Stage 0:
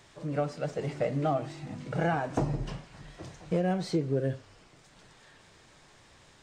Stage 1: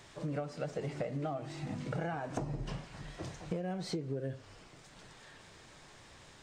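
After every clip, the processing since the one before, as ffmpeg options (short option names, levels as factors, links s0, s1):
-af "acompressor=threshold=0.0178:ratio=10,volume=1.19"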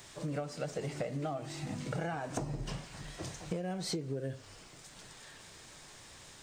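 -af "crystalizer=i=2:c=0"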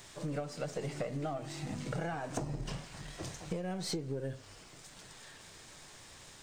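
-af "aeval=exprs='if(lt(val(0),0),0.708*val(0),val(0))':c=same,volume=1.12"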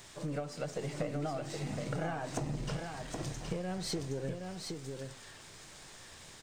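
-af "aecho=1:1:769:0.562"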